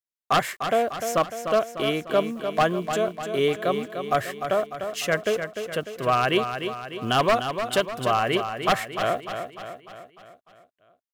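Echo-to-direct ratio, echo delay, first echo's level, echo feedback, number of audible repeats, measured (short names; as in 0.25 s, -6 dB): -6.5 dB, 0.299 s, -8.0 dB, 53%, 5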